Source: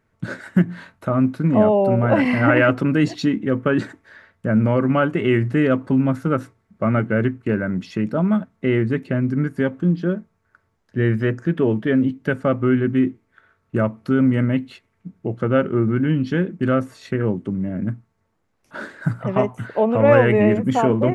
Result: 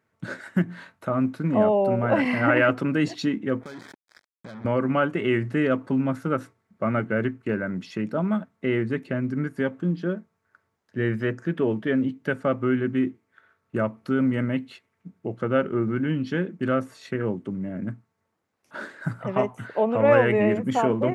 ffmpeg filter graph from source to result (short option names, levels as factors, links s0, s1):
-filter_complex "[0:a]asettb=1/sr,asplit=3[s0][s1][s2];[s0]atrim=end=3.614[s3];[s1]atrim=start=3.61:end=4.65,asetpts=PTS-STARTPTS,afade=t=in:d=0.004:c=qsin,afade=t=out:st=1.036:d=0.004:c=qsin,acompressor=threshold=0.0282:ratio=10:attack=3.2:release=140:knee=1:detection=peak,acrusher=bits=5:mix=0:aa=0.5,asuperstop=centerf=2800:order=4:qfactor=5.2[s4];[s2]atrim=start=4.646[s5];[s3][s4]acrossfade=d=0.004:c1=hsin:c2=qsin[s6];[s6][s5]acrossfade=d=0.004:c1=qsin:c2=hsin,highpass=84,lowshelf=f=250:g=-5.5,volume=0.708"